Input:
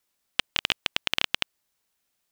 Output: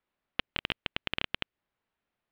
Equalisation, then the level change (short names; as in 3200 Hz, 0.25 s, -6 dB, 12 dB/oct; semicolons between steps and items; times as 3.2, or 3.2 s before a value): dynamic EQ 910 Hz, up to -6 dB, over -47 dBFS, Q 0.81; air absorption 460 m; +1.0 dB